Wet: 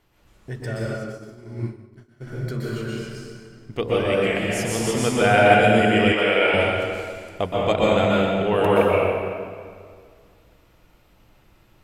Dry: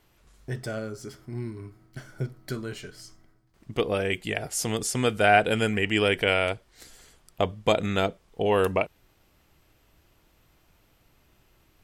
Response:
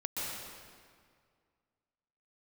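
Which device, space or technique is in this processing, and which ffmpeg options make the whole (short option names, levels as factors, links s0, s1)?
swimming-pool hall: -filter_complex "[1:a]atrim=start_sample=2205[s0];[0:a][s0]afir=irnorm=-1:irlink=0,highshelf=f=4300:g=-5.5,asplit=3[s1][s2][s3];[s1]afade=t=out:st=0.96:d=0.02[s4];[s2]agate=range=0.0224:threshold=0.0562:ratio=3:detection=peak,afade=t=in:st=0.96:d=0.02,afade=t=out:st=2.26:d=0.02[s5];[s3]afade=t=in:st=2.26:d=0.02[s6];[s4][s5][s6]amix=inputs=3:normalize=0,asettb=1/sr,asplit=3[s7][s8][s9];[s7]atrim=end=6.124[s10];[s8]atrim=start=6.12:end=6.54,asetpts=PTS-STARTPTS,afade=t=in:d=0.004:c=qsin,afade=t=out:st=0.416:d=0.004:c=qsin,bass=f=250:g=-14,treble=f=4000:g=-6[s11];[s9]atrim=start=6.536[s12];[s10][s11]acrossfade=d=0.004:c1=hsin:c2=qsin[s13];[s13][s12]acrossfade=d=0.004:c1=qsin:c2=hsin,volume=1.33"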